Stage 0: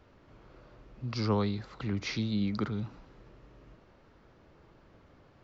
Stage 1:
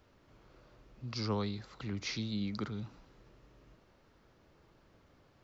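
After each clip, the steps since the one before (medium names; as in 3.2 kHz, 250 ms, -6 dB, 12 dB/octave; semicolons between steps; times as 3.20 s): treble shelf 4.6 kHz +11 dB; trim -6 dB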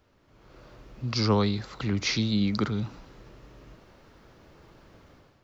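level rider gain up to 11 dB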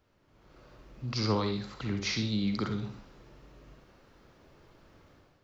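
reverberation RT60 0.40 s, pre-delay 43 ms, DRR 5.5 dB; trim -5.5 dB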